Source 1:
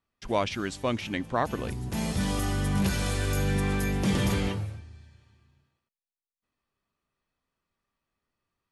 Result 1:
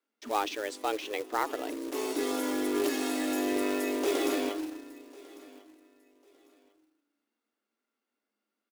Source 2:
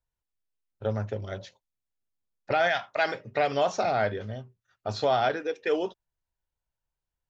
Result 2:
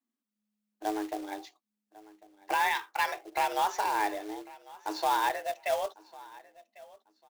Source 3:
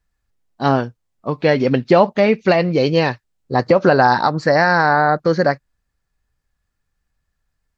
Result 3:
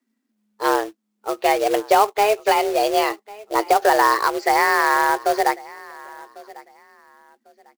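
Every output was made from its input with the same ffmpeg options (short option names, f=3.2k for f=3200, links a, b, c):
-af "aecho=1:1:1098|2196:0.0841|0.021,afreqshift=210,acrusher=bits=3:mode=log:mix=0:aa=0.000001,volume=-3.5dB"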